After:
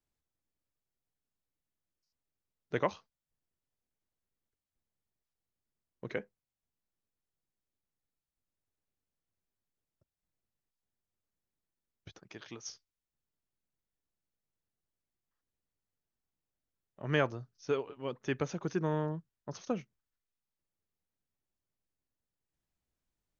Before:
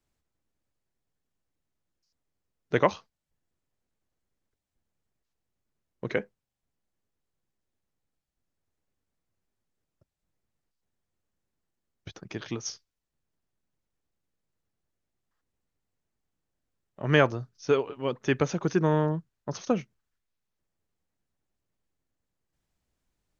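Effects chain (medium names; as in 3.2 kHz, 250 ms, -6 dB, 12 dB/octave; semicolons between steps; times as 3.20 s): 12.19–12.68 s: bass shelf 350 Hz -8.5 dB; trim -8.5 dB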